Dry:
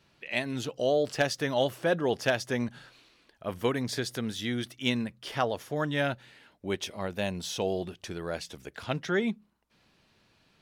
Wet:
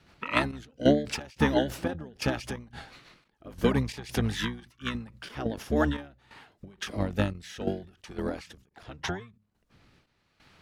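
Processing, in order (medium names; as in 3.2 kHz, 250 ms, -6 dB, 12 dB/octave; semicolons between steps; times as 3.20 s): rotary cabinet horn 6.7 Hz, later 0.8 Hz, at 5.16 s; harmony voices -12 st 0 dB; trance gate "xxx..xx." 88 bpm -12 dB; endings held to a fixed fall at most 130 dB/s; trim +6 dB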